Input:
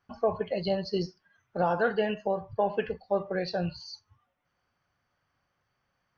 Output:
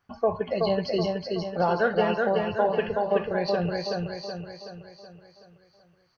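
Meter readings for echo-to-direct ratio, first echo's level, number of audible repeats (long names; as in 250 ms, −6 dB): −2.0 dB, −3.0 dB, 6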